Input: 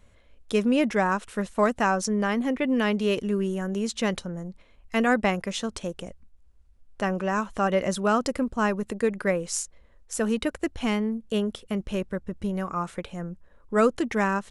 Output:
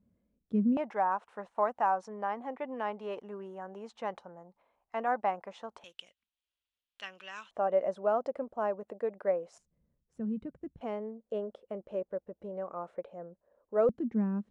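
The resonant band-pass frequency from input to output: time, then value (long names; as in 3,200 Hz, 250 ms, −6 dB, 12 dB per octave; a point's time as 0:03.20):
resonant band-pass, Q 3.1
200 Hz
from 0:00.77 830 Hz
from 0:05.84 3,200 Hz
from 0:07.51 650 Hz
from 0:09.58 160 Hz
from 0:10.81 580 Hz
from 0:13.89 220 Hz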